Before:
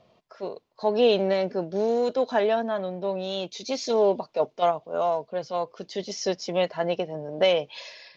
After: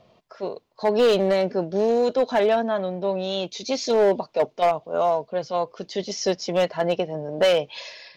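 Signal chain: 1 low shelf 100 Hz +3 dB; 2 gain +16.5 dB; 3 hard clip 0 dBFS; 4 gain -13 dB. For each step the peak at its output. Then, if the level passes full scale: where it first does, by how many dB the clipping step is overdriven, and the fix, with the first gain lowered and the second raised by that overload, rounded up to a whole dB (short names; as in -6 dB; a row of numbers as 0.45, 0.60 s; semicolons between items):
-9.5, +7.0, 0.0, -13.0 dBFS; step 2, 7.0 dB; step 2 +9.5 dB, step 4 -6 dB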